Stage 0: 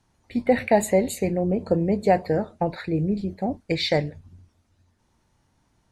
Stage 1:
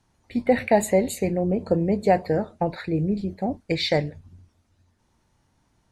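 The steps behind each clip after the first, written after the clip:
no processing that can be heard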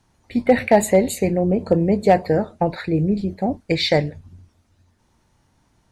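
hard clipping −9.5 dBFS, distortion −31 dB
level +4.5 dB

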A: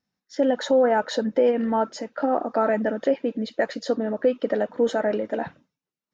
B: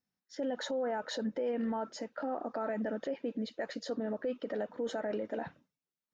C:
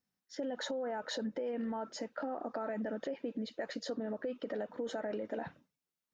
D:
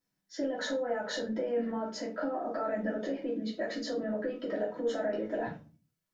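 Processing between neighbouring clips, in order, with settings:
brickwall limiter −19 dBFS, peak gain reduction 8.5 dB; level −8 dB
downward compressor, threshold −35 dBFS, peak gain reduction 5 dB; level +1 dB
rectangular room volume 140 cubic metres, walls furnished, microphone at 2.9 metres; level −2 dB

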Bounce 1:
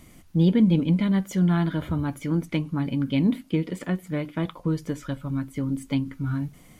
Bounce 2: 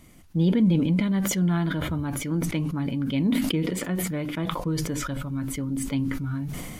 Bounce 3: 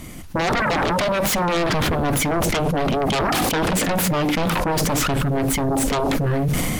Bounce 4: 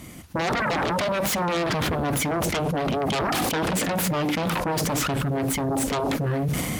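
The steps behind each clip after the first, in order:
level that may fall only so fast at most 28 dB per second; level −2.5 dB
sine wavefolder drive 18 dB, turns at −11 dBFS; level −6 dB
high-pass filter 59 Hz; level −4 dB

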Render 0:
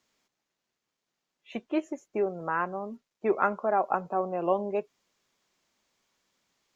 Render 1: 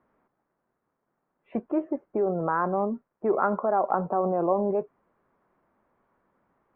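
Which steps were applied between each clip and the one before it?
low-pass filter 1,400 Hz 24 dB per octave
in parallel at +1.5 dB: compressor whose output falls as the input rises −35 dBFS, ratio −1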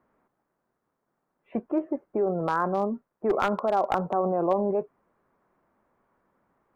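wavefolder on the positive side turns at −17.5 dBFS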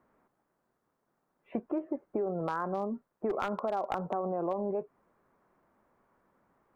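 downward compressor 4 to 1, threshold −30 dBFS, peak gain reduction 10 dB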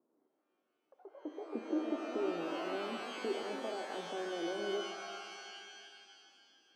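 delay with pitch and tempo change per echo 90 ms, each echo +5 semitones, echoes 3, each echo −6 dB
four-pole ladder band-pass 370 Hz, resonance 50%
reverb with rising layers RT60 2.4 s, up +12 semitones, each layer −2 dB, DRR 5.5 dB
level +3 dB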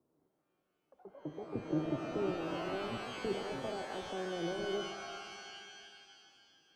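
sub-octave generator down 1 octave, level −3 dB

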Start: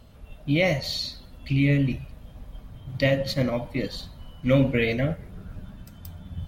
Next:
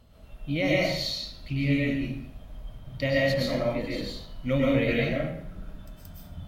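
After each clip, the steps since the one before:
convolution reverb RT60 0.65 s, pre-delay 85 ms, DRR −4.5 dB
level −6.5 dB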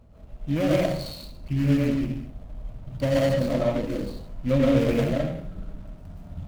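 running median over 25 samples
level +4 dB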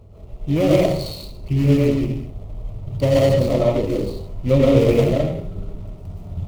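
thirty-one-band graphic EQ 100 Hz +10 dB, 250 Hz −5 dB, 400 Hz +11 dB, 1,600 Hz −12 dB
level +5.5 dB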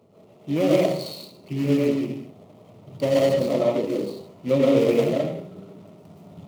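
high-pass filter 170 Hz 24 dB per octave
level −3 dB

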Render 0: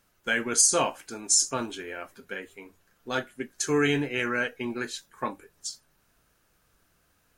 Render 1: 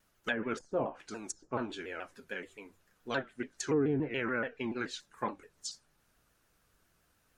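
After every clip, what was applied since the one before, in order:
treble cut that deepens with the level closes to 630 Hz, closed at −20.5 dBFS
pitch modulation by a square or saw wave saw down 7 Hz, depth 160 cents
level −4 dB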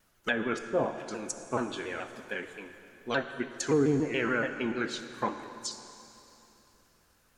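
dense smooth reverb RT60 3.2 s, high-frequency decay 0.95×, DRR 8.5 dB
level +4 dB

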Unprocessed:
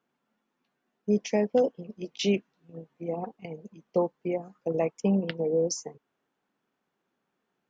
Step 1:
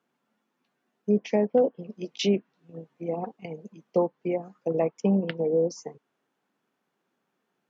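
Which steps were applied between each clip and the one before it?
high-pass filter 110 Hz
treble cut that deepens with the level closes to 1,500 Hz, closed at −21 dBFS
level +2 dB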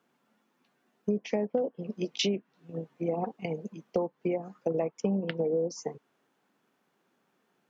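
downward compressor 5 to 1, threshold −31 dBFS, peak gain reduction 13.5 dB
level +4.5 dB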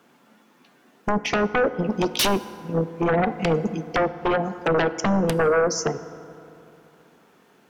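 sine wavefolder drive 14 dB, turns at −14 dBFS
on a send at −13 dB: convolution reverb RT60 3.0 s, pre-delay 3 ms
on the sum: level −2.5 dB

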